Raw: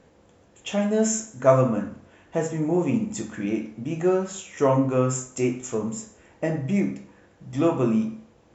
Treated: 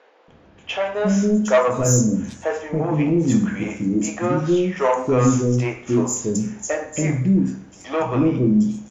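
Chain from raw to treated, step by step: saturation -15.5 dBFS, distortion -14 dB; three bands offset in time mids, lows, highs 270/730 ms, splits 460/4800 Hz; speed mistake 25 fps video run at 24 fps; trim +8 dB

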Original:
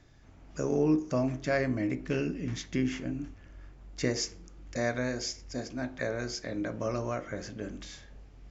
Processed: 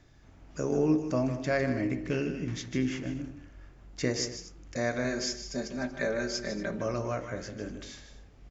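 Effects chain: 5.04–6.80 s: comb 5.1 ms, depth 82%; multi-tap echo 154/237 ms -10.5/-18 dB

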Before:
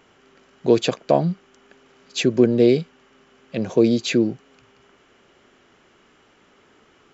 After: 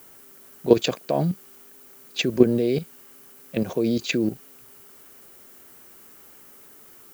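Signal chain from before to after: level-controlled noise filter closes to 2.8 kHz, open at -15.5 dBFS; level held to a coarse grid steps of 12 dB; added noise violet -52 dBFS; trim +2.5 dB

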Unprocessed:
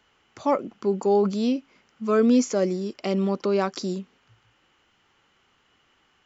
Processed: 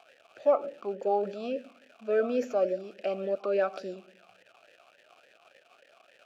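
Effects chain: tracing distortion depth 0.056 ms; crackle 340 per s -34 dBFS; on a send at -17 dB: reverberation RT60 0.50 s, pre-delay 77 ms; on the sum: talking filter a-e 3.5 Hz; trim +7 dB

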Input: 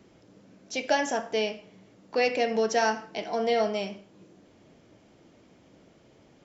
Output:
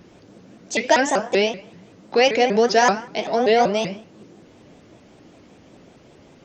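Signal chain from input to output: vibrato with a chosen wave saw up 5.2 Hz, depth 250 cents; trim +8.5 dB

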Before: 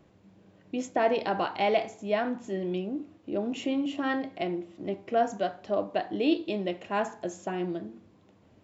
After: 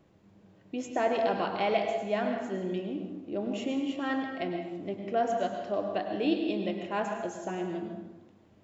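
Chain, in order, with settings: plate-style reverb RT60 1.1 s, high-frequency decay 0.7×, pre-delay 90 ms, DRR 4 dB; trim -3 dB

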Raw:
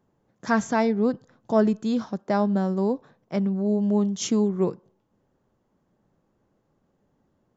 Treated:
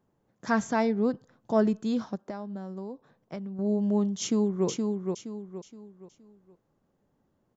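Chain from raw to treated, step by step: 2.15–3.59 s: compression 6:1, threshold -32 dBFS, peak gain reduction 13 dB; 4.21–4.67 s: echo throw 470 ms, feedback 35%, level -4 dB; trim -3.5 dB

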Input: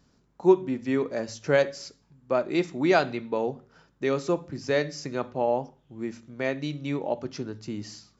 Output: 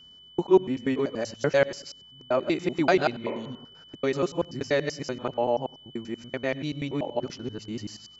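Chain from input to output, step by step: time reversed locally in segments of 96 ms; whistle 3 kHz -49 dBFS; spectral replace 3.30–3.60 s, 290–2700 Hz both

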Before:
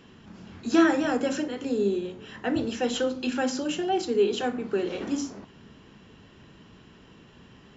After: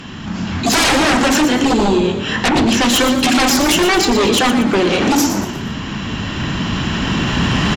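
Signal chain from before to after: recorder AGC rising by 6.2 dB/s; peaking EQ 440 Hz -11 dB 0.68 oct; sine folder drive 18 dB, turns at -10.5 dBFS; frequency-shifting echo 118 ms, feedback 41%, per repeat +39 Hz, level -9.5 dB; on a send at -20 dB: reverberation RT60 0.45 s, pre-delay 100 ms

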